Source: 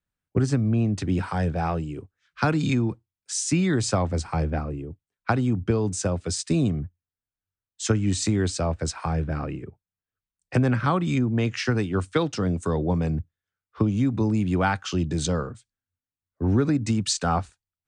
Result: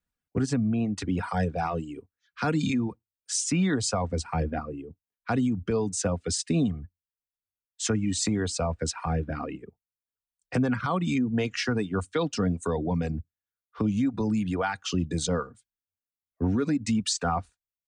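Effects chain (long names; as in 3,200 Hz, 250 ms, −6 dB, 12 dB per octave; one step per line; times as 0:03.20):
comb filter 4.2 ms, depth 36%
brickwall limiter −16.5 dBFS, peak gain reduction 9 dB
reverb reduction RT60 1.2 s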